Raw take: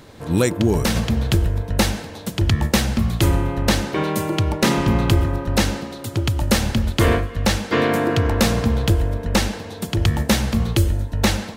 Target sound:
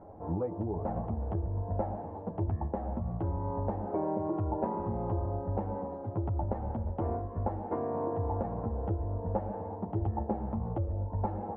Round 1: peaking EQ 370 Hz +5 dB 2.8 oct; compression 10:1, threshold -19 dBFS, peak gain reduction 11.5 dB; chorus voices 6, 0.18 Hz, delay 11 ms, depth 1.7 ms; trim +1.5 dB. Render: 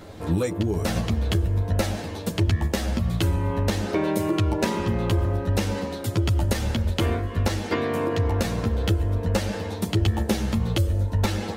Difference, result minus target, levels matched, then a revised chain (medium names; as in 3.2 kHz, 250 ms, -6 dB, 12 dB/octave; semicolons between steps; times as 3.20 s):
1 kHz band -6.0 dB
peaking EQ 370 Hz +5 dB 2.8 oct; compression 10:1, threshold -19 dBFS, peak gain reduction 11.5 dB; four-pole ladder low-pass 930 Hz, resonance 60%; chorus voices 6, 0.18 Hz, delay 11 ms, depth 1.7 ms; trim +1.5 dB